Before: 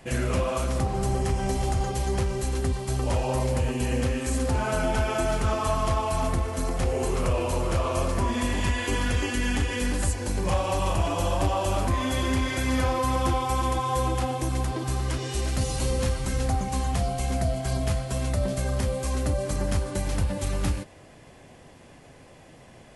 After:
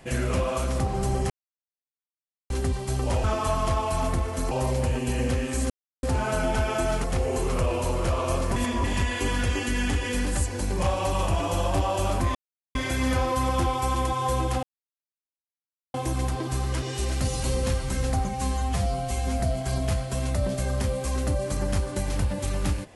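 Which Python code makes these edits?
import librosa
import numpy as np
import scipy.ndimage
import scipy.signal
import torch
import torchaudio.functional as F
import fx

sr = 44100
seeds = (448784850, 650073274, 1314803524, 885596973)

y = fx.edit(x, sr, fx.silence(start_s=1.3, length_s=1.2),
    fx.insert_silence(at_s=4.43, length_s=0.33),
    fx.move(start_s=5.44, length_s=1.27, to_s=3.24),
    fx.reverse_span(start_s=8.23, length_s=0.28),
    fx.silence(start_s=12.02, length_s=0.4),
    fx.insert_silence(at_s=14.3, length_s=1.31),
    fx.stretch_span(start_s=16.65, length_s=0.74, factor=1.5), tone=tone)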